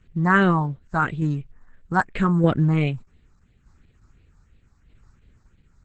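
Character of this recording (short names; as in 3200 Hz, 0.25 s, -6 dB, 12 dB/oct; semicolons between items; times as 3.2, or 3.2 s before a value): tremolo saw down 0.82 Hz, depth 40%; phasing stages 4, 2.9 Hz, lowest notch 500–1000 Hz; Opus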